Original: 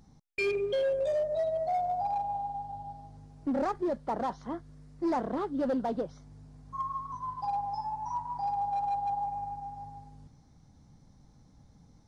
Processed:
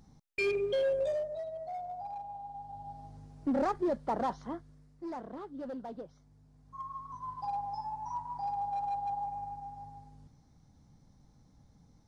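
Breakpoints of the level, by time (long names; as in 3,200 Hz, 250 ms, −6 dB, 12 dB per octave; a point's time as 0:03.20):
0:01.02 −1 dB
0:01.44 −10 dB
0:02.38 −10 dB
0:03.06 0 dB
0:04.36 0 dB
0:05.04 −11 dB
0:06.42 −11 dB
0:07.34 −3.5 dB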